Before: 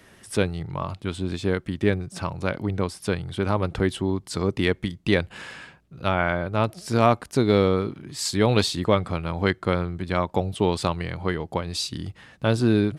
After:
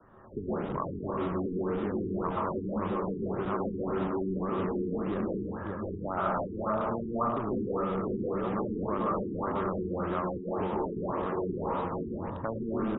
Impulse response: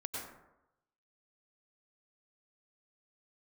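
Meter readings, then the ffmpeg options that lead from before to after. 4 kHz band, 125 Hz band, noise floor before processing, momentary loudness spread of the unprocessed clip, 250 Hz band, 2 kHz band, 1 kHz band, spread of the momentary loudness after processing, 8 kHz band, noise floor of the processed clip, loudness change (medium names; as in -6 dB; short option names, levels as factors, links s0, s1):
under -20 dB, -11.5 dB, -55 dBFS, 10 LU, -6.0 dB, -15.0 dB, -4.0 dB, 4 LU, under -40 dB, -39 dBFS, -7.5 dB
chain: -filter_complex "[0:a]adynamicequalizer=threshold=0.0158:dfrequency=110:dqfactor=1.8:tfrequency=110:tqfactor=1.8:attack=5:release=100:ratio=0.375:range=2:mode=cutabove:tftype=bell,aecho=1:1:569:0.224,asplit=2[s0][s1];[s1]acrusher=samples=35:mix=1:aa=0.000001:lfo=1:lforange=35:lforate=2.7,volume=0.422[s2];[s0][s2]amix=inputs=2:normalize=0,acompressor=threshold=0.1:ratio=20,highshelf=f=1700:t=q:w=3:g=-13[s3];[1:a]atrim=start_sample=2205,asetrate=36603,aresample=44100[s4];[s3][s4]afir=irnorm=-1:irlink=0,acrossover=split=130|1200[s5][s6][s7];[s5]aeval=exprs='(mod(50.1*val(0)+1,2)-1)/50.1':c=same[s8];[s6]alimiter=limit=0.1:level=0:latency=1:release=37[s9];[s8][s9][s7]amix=inputs=3:normalize=0,afftfilt=real='re*lt(b*sr/1024,430*pow(3900/430,0.5+0.5*sin(2*PI*1.8*pts/sr)))':imag='im*lt(b*sr/1024,430*pow(3900/430,0.5+0.5*sin(2*PI*1.8*pts/sr)))':win_size=1024:overlap=0.75,volume=0.631"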